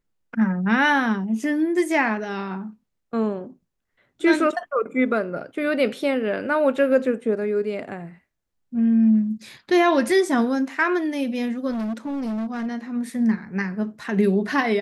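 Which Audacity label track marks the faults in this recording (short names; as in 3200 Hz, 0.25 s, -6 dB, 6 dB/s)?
11.700000	12.670000	clipped -24.5 dBFS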